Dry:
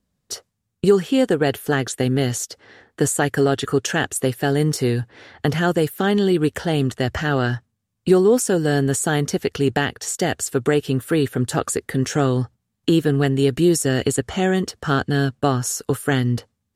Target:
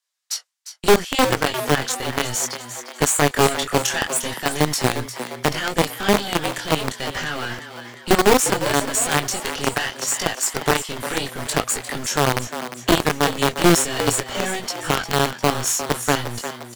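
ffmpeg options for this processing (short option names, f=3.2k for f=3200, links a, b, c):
-filter_complex "[0:a]equalizer=f=5.5k:t=o:w=2.4:g=6.5,aeval=exprs='(tanh(3.98*val(0)+0.8)-tanh(0.8))/3.98':c=same,flanger=delay=18:depth=7.7:speed=0.68,acrossover=split=840[a][b];[a]acrusher=bits=4:dc=4:mix=0:aa=0.000001[c];[c][b]amix=inputs=2:normalize=0,asplit=7[d][e][f][g][h][i][j];[e]adelay=352,afreqshift=120,volume=-11dB[k];[f]adelay=704,afreqshift=240,volume=-16.5dB[l];[g]adelay=1056,afreqshift=360,volume=-22dB[m];[h]adelay=1408,afreqshift=480,volume=-27.5dB[n];[i]adelay=1760,afreqshift=600,volume=-33.1dB[o];[j]adelay=2112,afreqshift=720,volume=-38.6dB[p];[d][k][l][m][n][o][p]amix=inputs=7:normalize=0,volume=6dB"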